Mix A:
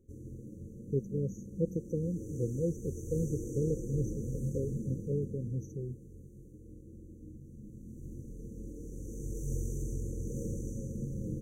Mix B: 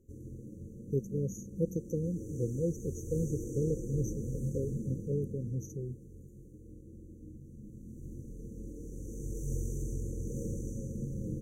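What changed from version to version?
speech: remove moving average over 5 samples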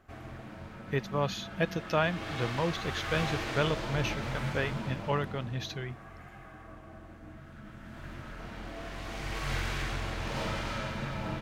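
master: remove linear-phase brick-wall band-stop 540–5,800 Hz

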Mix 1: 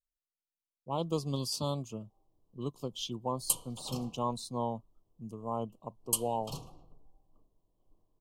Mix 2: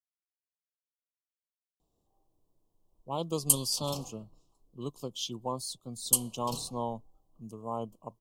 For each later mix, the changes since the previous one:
speech: entry +2.20 s
master: add bass and treble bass −2 dB, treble +6 dB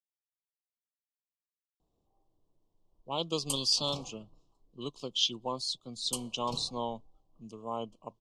speech: add meter weighting curve D
master: add high-frequency loss of the air 94 metres

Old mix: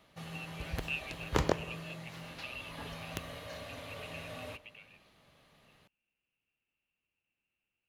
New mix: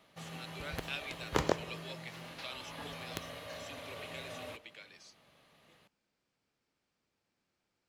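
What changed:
speech: remove transistor ladder low-pass 2,800 Hz, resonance 90%
master: add low-shelf EQ 91 Hz −11.5 dB

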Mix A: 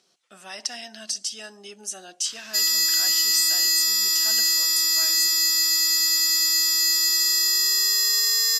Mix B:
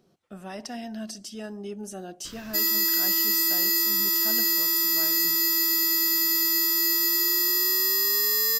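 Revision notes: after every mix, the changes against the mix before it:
background +3.5 dB
master: remove meter weighting curve ITU-R 468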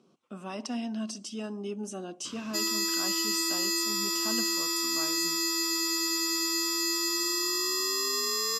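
master: add loudspeaker in its box 170–9,300 Hz, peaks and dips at 250 Hz +7 dB, 700 Hz −4 dB, 1,100 Hz +8 dB, 1,800 Hz −9 dB, 2,700 Hz +4 dB, 4,400 Hz −3 dB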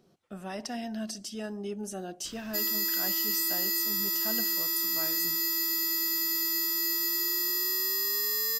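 background −6.0 dB
master: remove loudspeaker in its box 170–9,300 Hz, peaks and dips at 250 Hz +7 dB, 700 Hz −4 dB, 1,100 Hz +8 dB, 1,800 Hz −9 dB, 2,700 Hz +4 dB, 4,400 Hz −3 dB

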